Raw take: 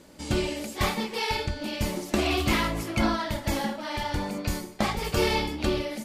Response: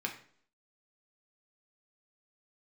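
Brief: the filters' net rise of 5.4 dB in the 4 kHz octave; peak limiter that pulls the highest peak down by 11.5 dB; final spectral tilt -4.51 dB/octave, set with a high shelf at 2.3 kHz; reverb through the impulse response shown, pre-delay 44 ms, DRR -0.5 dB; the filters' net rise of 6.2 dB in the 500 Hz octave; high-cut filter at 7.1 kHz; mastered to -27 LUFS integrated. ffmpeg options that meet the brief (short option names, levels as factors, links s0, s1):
-filter_complex "[0:a]lowpass=7100,equalizer=f=500:t=o:g=8,highshelf=f=2300:g=4.5,equalizer=f=4000:t=o:g=3,alimiter=limit=0.141:level=0:latency=1,asplit=2[s0][s1];[1:a]atrim=start_sample=2205,adelay=44[s2];[s1][s2]afir=irnorm=-1:irlink=0,volume=0.75[s3];[s0][s3]amix=inputs=2:normalize=0,volume=0.75"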